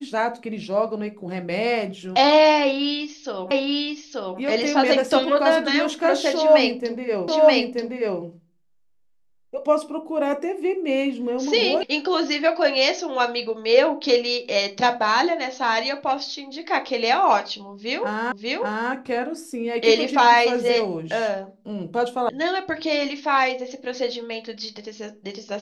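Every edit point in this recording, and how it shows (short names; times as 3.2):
3.51 repeat of the last 0.88 s
7.28 repeat of the last 0.93 s
11.83 sound cut off
18.32 repeat of the last 0.59 s
22.29 sound cut off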